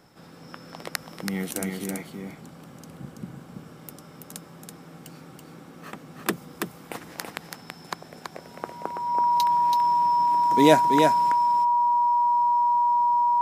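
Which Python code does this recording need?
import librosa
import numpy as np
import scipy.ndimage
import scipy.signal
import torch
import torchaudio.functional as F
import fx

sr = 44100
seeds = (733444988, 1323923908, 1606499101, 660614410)

y = fx.notch(x, sr, hz=960.0, q=30.0)
y = fx.fix_echo_inverse(y, sr, delay_ms=330, level_db=-4.5)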